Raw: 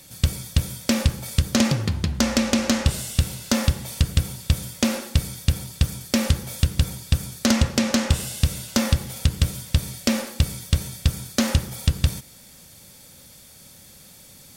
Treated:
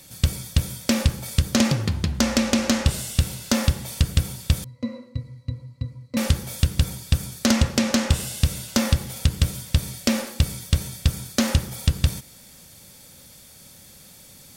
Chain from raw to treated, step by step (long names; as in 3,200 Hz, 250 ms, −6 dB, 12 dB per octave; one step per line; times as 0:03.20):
0:04.64–0:06.17: resonances in every octave B, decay 0.1 s